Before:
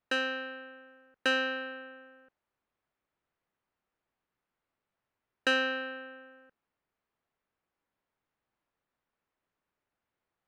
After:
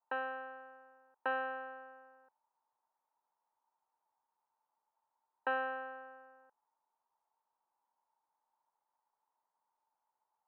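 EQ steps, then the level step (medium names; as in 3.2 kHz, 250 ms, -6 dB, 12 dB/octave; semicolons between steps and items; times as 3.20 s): band-pass filter 900 Hz, Q 11; distance through air 460 m; +16.5 dB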